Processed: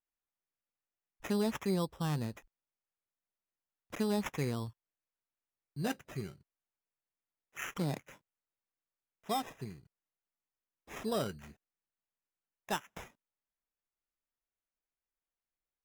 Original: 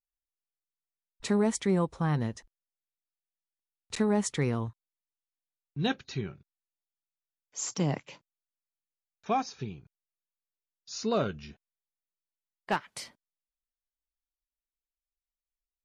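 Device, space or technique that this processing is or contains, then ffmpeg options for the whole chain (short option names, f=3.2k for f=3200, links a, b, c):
crushed at another speed: -af "asetrate=22050,aresample=44100,acrusher=samples=20:mix=1:aa=0.000001,asetrate=88200,aresample=44100,volume=-6dB"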